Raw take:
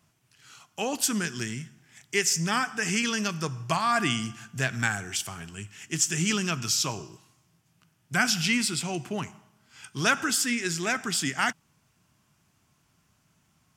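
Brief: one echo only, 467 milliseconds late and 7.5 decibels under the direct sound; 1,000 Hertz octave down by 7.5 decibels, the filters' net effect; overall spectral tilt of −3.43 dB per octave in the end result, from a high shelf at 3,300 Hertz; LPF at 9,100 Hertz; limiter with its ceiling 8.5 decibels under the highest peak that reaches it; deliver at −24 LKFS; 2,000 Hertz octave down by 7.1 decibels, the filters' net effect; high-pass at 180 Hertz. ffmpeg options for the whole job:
ffmpeg -i in.wav -af "highpass=180,lowpass=9100,equalizer=frequency=1000:width_type=o:gain=-8,equalizer=frequency=2000:width_type=o:gain=-4.5,highshelf=frequency=3300:gain=-6.5,alimiter=limit=-22.5dB:level=0:latency=1,aecho=1:1:467:0.422,volume=10dB" out.wav

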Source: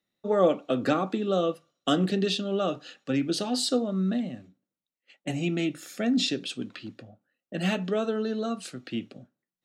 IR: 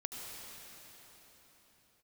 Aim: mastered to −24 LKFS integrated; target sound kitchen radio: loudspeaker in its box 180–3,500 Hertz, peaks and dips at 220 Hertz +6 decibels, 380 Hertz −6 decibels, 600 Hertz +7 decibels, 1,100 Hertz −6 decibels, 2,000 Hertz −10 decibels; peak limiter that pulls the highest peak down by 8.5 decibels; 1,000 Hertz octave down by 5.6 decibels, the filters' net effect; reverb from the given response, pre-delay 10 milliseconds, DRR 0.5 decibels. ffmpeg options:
-filter_complex "[0:a]equalizer=frequency=1000:width_type=o:gain=-8.5,alimiter=limit=-20dB:level=0:latency=1,asplit=2[link_01][link_02];[1:a]atrim=start_sample=2205,adelay=10[link_03];[link_02][link_03]afir=irnorm=-1:irlink=0,volume=-0.5dB[link_04];[link_01][link_04]amix=inputs=2:normalize=0,highpass=180,equalizer=frequency=220:width_type=q:width=4:gain=6,equalizer=frequency=380:width_type=q:width=4:gain=-6,equalizer=frequency=600:width_type=q:width=4:gain=7,equalizer=frequency=1100:width_type=q:width=4:gain=-6,equalizer=frequency=2000:width_type=q:width=4:gain=-10,lowpass=frequency=3500:width=0.5412,lowpass=frequency=3500:width=1.3066,volume=3.5dB"

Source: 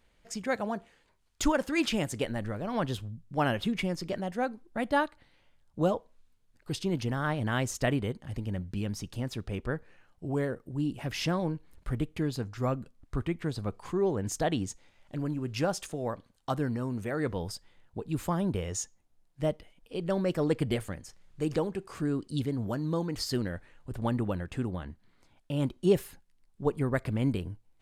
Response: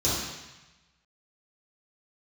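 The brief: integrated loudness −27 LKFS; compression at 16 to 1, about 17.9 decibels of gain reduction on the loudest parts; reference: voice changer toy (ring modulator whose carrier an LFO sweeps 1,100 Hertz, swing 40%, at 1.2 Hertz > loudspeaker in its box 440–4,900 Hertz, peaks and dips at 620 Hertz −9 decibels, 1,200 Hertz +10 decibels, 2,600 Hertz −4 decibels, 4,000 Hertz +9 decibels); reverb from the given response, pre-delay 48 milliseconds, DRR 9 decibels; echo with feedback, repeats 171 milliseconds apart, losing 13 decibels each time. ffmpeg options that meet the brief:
-filter_complex "[0:a]acompressor=threshold=-37dB:ratio=16,aecho=1:1:171|342|513:0.224|0.0493|0.0108,asplit=2[link_01][link_02];[1:a]atrim=start_sample=2205,adelay=48[link_03];[link_02][link_03]afir=irnorm=-1:irlink=0,volume=-20.5dB[link_04];[link_01][link_04]amix=inputs=2:normalize=0,aeval=exprs='val(0)*sin(2*PI*1100*n/s+1100*0.4/1.2*sin(2*PI*1.2*n/s))':channel_layout=same,highpass=440,equalizer=frequency=620:width_type=q:width=4:gain=-9,equalizer=frequency=1200:width_type=q:width=4:gain=10,equalizer=frequency=2600:width_type=q:width=4:gain=-4,equalizer=frequency=4000:width_type=q:width=4:gain=9,lowpass=frequency=4900:width=0.5412,lowpass=frequency=4900:width=1.3066,volume=12dB"

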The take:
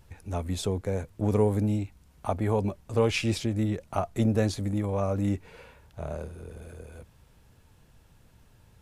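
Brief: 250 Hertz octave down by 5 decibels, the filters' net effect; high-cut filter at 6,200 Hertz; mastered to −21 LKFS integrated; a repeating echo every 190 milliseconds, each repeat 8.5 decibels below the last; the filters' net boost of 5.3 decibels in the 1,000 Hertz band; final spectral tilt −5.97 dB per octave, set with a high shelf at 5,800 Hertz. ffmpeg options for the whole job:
ffmpeg -i in.wav -af "lowpass=6200,equalizer=frequency=250:width_type=o:gain=-7,equalizer=frequency=1000:width_type=o:gain=7.5,highshelf=frequency=5800:gain=-3,aecho=1:1:190|380|570|760:0.376|0.143|0.0543|0.0206,volume=8.5dB" out.wav

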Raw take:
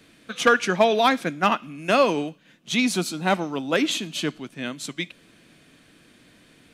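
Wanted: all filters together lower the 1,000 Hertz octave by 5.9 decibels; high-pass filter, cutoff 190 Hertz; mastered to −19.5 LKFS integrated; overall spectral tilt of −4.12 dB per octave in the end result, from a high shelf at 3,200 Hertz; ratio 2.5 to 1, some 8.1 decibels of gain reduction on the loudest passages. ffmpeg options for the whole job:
ffmpeg -i in.wav -af "highpass=190,equalizer=frequency=1000:width_type=o:gain=-7.5,highshelf=frequency=3200:gain=-8,acompressor=threshold=-28dB:ratio=2.5,volume=12.5dB" out.wav

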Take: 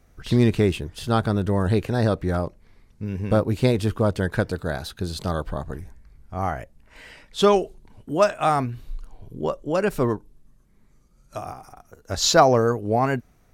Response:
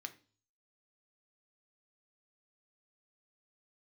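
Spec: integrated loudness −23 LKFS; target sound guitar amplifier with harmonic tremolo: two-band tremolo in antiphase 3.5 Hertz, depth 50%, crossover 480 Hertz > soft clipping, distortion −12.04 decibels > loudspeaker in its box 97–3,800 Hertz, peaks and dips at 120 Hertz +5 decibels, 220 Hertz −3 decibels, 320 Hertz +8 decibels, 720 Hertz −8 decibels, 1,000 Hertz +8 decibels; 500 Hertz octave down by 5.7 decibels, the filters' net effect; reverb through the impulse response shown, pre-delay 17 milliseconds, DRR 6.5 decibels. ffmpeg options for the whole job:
-filter_complex "[0:a]equalizer=frequency=500:width_type=o:gain=-8,asplit=2[link_01][link_02];[1:a]atrim=start_sample=2205,adelay=17[link_03];[link_02][link_03]afir=irnorm=-1:irlink=0,volume=-3.5dB[link_04];[link_01][link_04]amix=inputs=2:normalize=0,acrossover=split=480[link_05][link_06];[link_05]aeval=exprs='val(0)*(1-0.5/2+0.5/2*cos(2*PI*3.5*n/s))':channel_layout=same[link_07];[link_06]aeval=exprs='val(0)*(1-0.5/2-0.5/2*cos(2*PI*3.5*n/s))':channel_layout=same[link_08];[link_07][link_08]amix=inputs=2:normalize=0,asoftclip=threshold=-18dB,highpass=97,equalizer=frequency=120:width_type=q:width=4:gain=5,equalizer=frequency=220:width_type=q:width=4:gain=-3,equalizer=frequency=320:width_type=q:width=4:gain=8,equalizer=frequency=720:width_type=q:width=4:gain=-8,equalizer=frequency=1000:width_type=q:width=4:gain=8,lowpass=frequency=3800:width=0.5412,lowpass=frequency=3800:width=1.3066,volume=5.5dB"

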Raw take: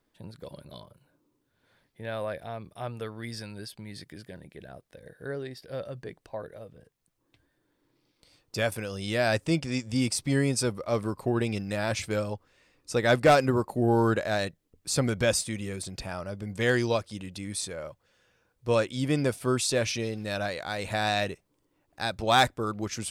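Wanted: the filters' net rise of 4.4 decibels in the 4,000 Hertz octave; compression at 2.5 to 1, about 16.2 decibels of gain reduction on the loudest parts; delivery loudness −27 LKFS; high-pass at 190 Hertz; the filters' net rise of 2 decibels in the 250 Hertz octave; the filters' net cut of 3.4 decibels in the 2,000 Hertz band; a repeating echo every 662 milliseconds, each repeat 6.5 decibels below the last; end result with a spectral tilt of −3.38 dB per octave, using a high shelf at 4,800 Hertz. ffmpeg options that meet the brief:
ffmpeg -i in.wav -af "highpass=190,equalizer=frequency=250:width_type=o:gain=4,equalizer=frequency=2000:width_type=o:gain=-6.5,equalizer=frequency=4000:width_type=o:gain=4.5,highshelf=frequency=4800:gain=5,acompressor=threshold=-40dB:ratio=2.5,aecho=1:1:662|1324|1986|2648|3310|3972:0.473|0.222|0.105|0.0491|0.0231|0.0109,volume=12dB" out.wav

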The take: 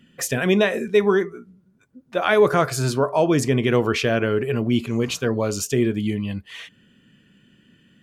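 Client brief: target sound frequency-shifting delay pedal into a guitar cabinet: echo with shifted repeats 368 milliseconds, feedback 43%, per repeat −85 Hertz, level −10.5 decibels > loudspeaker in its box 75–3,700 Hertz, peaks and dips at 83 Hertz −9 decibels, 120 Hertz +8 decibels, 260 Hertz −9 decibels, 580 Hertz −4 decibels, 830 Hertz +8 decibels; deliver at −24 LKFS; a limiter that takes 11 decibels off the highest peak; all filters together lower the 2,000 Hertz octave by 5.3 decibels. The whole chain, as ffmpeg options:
ffmpeg -i in.wav -filter_complex "[0:a]equalizer=frequency=2000:width_type=o:gain=-7.5,alimiter=limit=-17.5dB:level=0:latency=1,asplit=6[link_01][link_02][link_03][link_04][link_05][link_06];[link_02]adelay=368,afreqshift=-85,volume=-10.5dB[link_07];[link_03]adelay=736,afreqshift=-170,volume=-17.8dB[link_08];[link_04]adelay=1104,afreqshift=-255,volume=-25.2dB[link_09];[link_05]adelay=1472,afreqshift=-340,volume=-32.5dB[link_10];[link_06]adelay=1840,afreqshift=-425,volume=-39.8dB[link_11];[link_01][link_07][link_08][link_09][link_10][link_11]amix=inputs=6:normalize=0,highpass=75,equalizer=frequency=83:width_type=q:width=4:gain=-9,equalizer=frequency=120:width_type=q:width=4:gain=8,equalizer=frequency=260:width_type=q:width=4:gain=-9,equalizer=frequency=580:width_type=q:width=4:gain=-4,equalizer=frequency=830:width_type=q:width=4:gain=8,lowpass=frequency=3700:width=0.5412,lowpass=frequency=3700:width=1.3066,volume=3.5dB" out.wav

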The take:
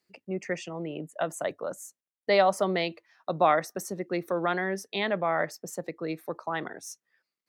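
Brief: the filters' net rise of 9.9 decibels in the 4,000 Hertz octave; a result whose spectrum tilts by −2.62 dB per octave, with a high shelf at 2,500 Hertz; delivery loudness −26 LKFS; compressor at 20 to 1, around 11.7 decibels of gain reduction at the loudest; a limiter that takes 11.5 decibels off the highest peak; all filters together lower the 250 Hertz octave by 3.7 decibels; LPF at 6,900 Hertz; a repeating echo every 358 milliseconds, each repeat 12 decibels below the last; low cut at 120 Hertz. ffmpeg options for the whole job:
ffmpeg -i in.wav -af "highpass=120,lowpass=6900,equalizer=frequency=250:width_type=o:gain=-6,highshelf=frequency=2500:gain=7,equalizer=frequency=4000:width_type=o:gain=6.5,acompressor=threshold=-27dB:ratio=20,alimiter=level_in=2.5dB:limit=-24dB:level=0:latency=1,volume=-2.5dB,aecho=1:1:358|716|1074:0.251|0.0628|0.0157,volume=12dB" out.wav

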